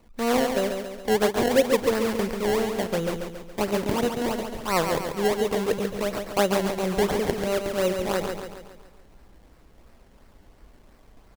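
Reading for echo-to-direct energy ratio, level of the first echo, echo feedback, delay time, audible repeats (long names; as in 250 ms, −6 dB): −4.5 dB, −6.0 dB, 51%, 139 ms, 5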